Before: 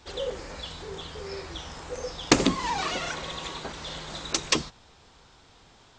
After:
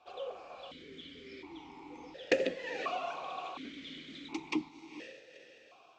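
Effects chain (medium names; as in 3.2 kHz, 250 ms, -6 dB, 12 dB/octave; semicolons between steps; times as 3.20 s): echo that smears into a reverb 479 ms, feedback 42%, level -11 dB; stepped vowel filter 1.4 Hz; trim +3.5 dB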